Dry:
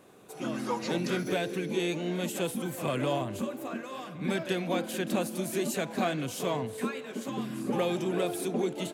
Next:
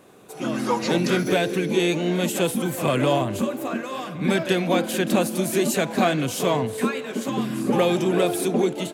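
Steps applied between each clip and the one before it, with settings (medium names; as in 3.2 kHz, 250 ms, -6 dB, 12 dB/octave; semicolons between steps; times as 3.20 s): level rider gain up to 4 dB; trim +5 dB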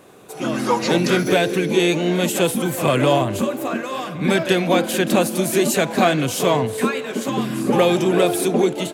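peaking EQ 220 Hz -2.5 dB; trim +4.5 dB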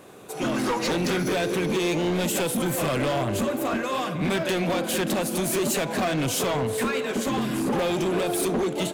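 compression, threshold -18 dBFS, peak gain reduction 7.5 dB; hard clipper -21.5 dBFS, distortion -10 dB; reverberation RT60 0.75 s, pre-delay 38 ms, DRR 17.5 dB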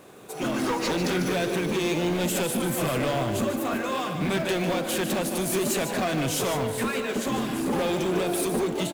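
in parallel at -7 dB: companded quantiser 4-bit; on the sum: delay 149 ms -8.5 dB; trim -5 dB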